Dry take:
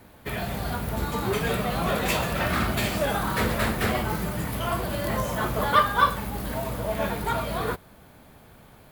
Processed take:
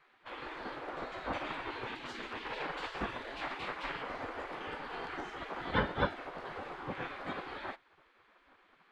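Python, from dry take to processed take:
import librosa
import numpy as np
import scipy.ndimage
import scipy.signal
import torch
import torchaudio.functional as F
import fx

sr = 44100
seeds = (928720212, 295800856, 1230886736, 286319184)

y = fx.peak_eq(x, sr, hz=290.0, db=-13.0, octaves=0.89, at=(1.85, 2.38))
y = fx.spec_gate(y, sr, threshold_db=-15, keep='weak')
y = fx.spacing_loss(y, sr, db_at_10k=38)
y = F.gain(torch.from_numpy(y), 2.0).numpy()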